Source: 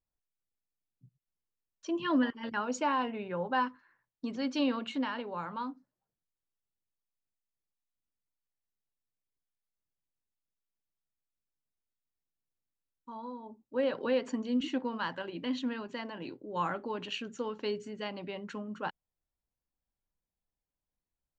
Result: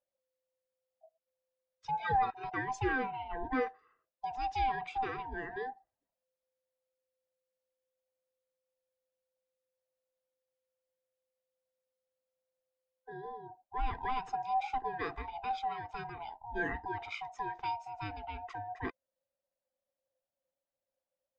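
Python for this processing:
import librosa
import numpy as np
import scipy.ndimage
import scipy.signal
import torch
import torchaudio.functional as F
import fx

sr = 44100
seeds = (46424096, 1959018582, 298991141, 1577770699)

y = fx.band_swap(x, sr, width_hz=500)
y = fx.high_shelf(y, sr, hz=4200.0, db=-9.5)
y = y * librosa.db_to_amplitude(-1.5)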